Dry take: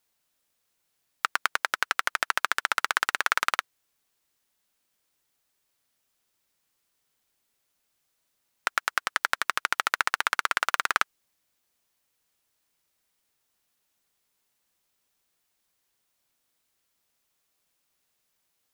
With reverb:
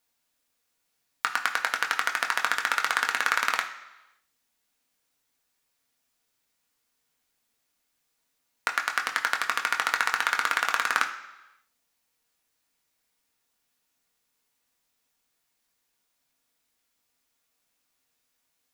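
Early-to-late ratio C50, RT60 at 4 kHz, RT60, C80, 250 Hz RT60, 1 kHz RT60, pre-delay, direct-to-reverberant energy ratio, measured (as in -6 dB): 10.5 dB, 0.95 s, 1.0 s, 12.5 dB, 0.95 s, 1.0 s, 3 ms, 2.0 dB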